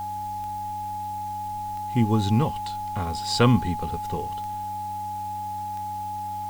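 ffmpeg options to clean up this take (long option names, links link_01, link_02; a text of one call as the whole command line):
ffmpeg -i in.wav -af "adeclick=threshold=4,bandreject=frequency=96.3:width_type=h:width=4,bandreject=frequency=192.6:width_type=h:width=4,bandreject=frequency=288.9:width_type=h:width=4,bandreject=frequency=840:width=30,afwtdn=0.0028" out.wav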